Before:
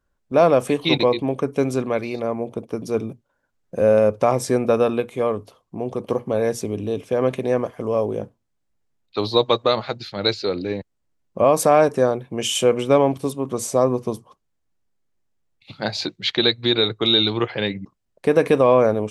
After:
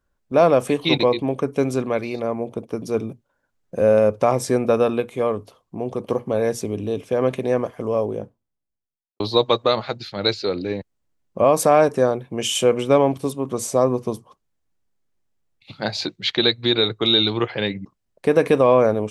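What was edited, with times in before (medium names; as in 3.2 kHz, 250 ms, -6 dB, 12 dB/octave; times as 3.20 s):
7.78–9.20 s: studio fade out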